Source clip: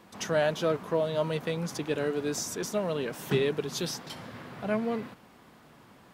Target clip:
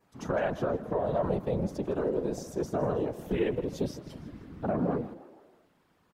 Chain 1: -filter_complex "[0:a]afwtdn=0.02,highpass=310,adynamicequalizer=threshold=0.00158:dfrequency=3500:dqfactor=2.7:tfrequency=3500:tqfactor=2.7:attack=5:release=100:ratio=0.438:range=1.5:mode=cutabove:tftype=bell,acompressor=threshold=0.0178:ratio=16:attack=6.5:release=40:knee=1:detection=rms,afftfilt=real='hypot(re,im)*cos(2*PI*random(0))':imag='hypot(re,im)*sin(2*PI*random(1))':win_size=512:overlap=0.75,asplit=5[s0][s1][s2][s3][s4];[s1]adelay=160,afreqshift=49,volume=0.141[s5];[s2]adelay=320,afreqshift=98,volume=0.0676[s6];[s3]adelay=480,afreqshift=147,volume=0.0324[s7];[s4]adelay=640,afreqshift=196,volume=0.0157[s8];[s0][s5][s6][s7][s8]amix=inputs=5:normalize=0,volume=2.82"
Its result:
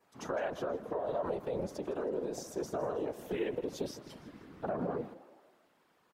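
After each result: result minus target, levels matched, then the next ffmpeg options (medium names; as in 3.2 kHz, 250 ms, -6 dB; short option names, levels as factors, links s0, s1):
compression: peak gain reduction +5 dB; 250 Hz band -2.0 dB
-filter_complex "[0:a]afwtdn=0.02,highpass=310,adynamicequalizer=threshold=0.00158:dfrequency=3500:dqfactor=2.7:tfrequency=3500:tqfactor=2.7:attack=5:release=100:ratio=0.438:range=1.5:mode=cutabove:tftype=bell,acompressor=threshold=0.0398:ratio=16:attack=6.5:release=40:knee=1:detection=rms,afftfilt=real='hypot(re,im)*cos(2*PI*random(0))':imag='hypot(re,im)*sin(2*PI*random(1))':win_size=512:overlap=0.75,asplit=5[s0][s1][s2][s3][s4];[s1]adelay=160,afreqshift=49,volume=0.141[s5];[s2]adelay=320,afreqshift=98,volume=0.0676[s6];[s3]adelay=480,afreqshift=147,volume=0.0324[s7];[s4]adelay=640,afreqshift=196,volume=0.0157[s8];[s0][s5][s6][s7][s8]amix=inputs=5:normalize=0,volume=2.82"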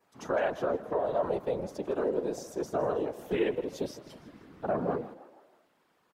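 250 Hz band -3.0 dB
-filter_complex "[0:a]afwtdn=0.02,adynamicequalizer=threshold=0.00158:dfrequency=3500:dqfactor=2.7:tfrequency=3500:tqfactor=2.7:attack=5:release=100:ratio=0.438:range=1.5:mode=cutabove:tftype=bell,acompressor=threshold=0.0398:ratio=16:attack=6.5:release=40:knee=1:detection=rms,afftfilt=real='hypot(re,im)*cos(2*PI*random(0))':imag='hypot(re,im)*sin(2*PI*random(1))':win_size=512:overlap=0.75,asplit=5[s0][s1][s2][s3][s4];[s1]adelay=160,afreqshift=49,volume=0.141[s5];[s2]adelay=320,afreqshift=98,volume=0.0676[s6];[s3]adelay=480,afreqshift=147,volume=0.0324[s7];[s4]adelay=640,afreqshift=196,volume=0.0157[s8];[s0][s5][s6][s7][s8]amix=inputs=5:normalize=0,volume=2.82"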